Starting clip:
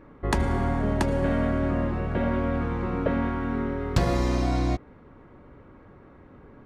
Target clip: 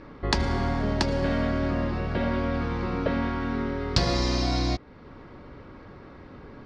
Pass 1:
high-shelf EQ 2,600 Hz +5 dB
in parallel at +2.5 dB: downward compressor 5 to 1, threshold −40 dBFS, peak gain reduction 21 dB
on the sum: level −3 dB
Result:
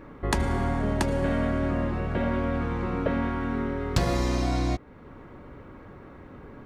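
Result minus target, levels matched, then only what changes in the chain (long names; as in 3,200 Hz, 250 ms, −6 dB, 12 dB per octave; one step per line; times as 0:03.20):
4,000 Hz band −7.0 dB
add first: low-pass with resonance 4,900 Hz, resonance Q 3.7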